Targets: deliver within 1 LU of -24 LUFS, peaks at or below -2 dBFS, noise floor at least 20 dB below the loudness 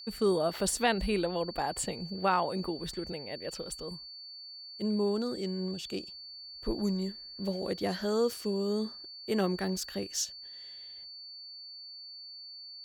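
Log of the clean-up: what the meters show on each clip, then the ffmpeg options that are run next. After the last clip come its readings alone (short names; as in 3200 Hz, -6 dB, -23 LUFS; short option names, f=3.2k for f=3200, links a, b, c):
steady tone 4500 Hz; tone level -44 dBFS; loudness -33.0 LUFS; peak -14.5 dBFS; loudness target -24.0 LUFS
-> -af "bandreject=f=4.5k:w=30"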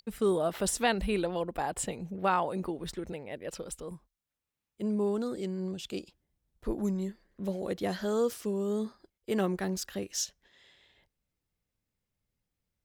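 steady tone none; loudness -33.0 LUFS; peak -14.5 dBFS; loudness target -24.0 LUFS
-> -af "volume=9dB"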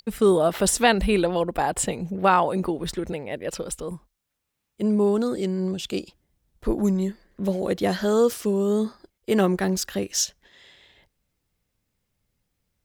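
loudness -24.0 LUFS; peak -5.5 dBFS; noise floor -79 dBFS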